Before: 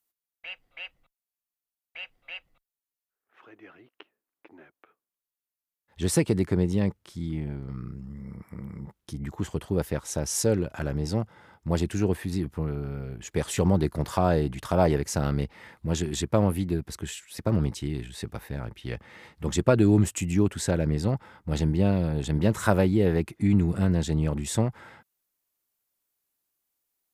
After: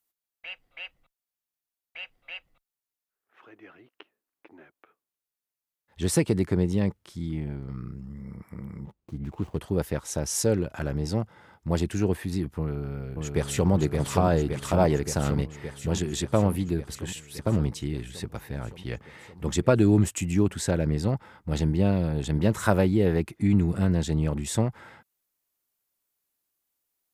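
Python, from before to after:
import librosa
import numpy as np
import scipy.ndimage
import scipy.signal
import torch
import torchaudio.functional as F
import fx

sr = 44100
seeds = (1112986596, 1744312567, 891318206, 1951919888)

y = fx.median_filter(x, sr, points=25, at=(8.84, 9.61))
y = fx.echo_throw(y, sr, start_s=12.59, length_s=1.11, ms=570, feedback_pct=75, wet_db=-4.0)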